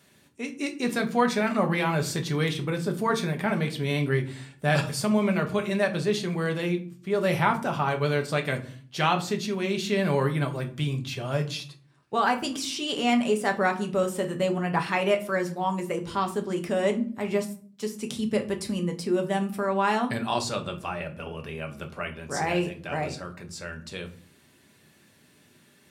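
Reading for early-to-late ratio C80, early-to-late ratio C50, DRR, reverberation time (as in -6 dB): 18.5 dB, 14.0 dB, 3.0 dB, 0.45 s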